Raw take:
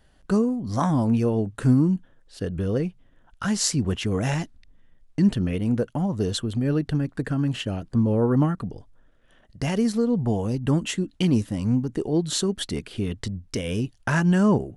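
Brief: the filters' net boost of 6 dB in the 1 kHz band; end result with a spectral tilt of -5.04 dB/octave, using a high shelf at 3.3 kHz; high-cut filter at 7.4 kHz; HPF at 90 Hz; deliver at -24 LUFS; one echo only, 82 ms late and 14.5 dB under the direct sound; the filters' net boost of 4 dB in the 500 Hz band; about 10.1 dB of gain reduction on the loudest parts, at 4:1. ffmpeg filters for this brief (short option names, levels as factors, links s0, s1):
-af "highpass=90,lowpass=7400,equalizer=f=500:t=o:g=3.5,equalizer=f=1000:t=o:g=5.5,highshelf=f=3300:g=8,acompressor=threshold=0.0501:ratio=4,aecho=1:1:82:0.188,volume=1.88"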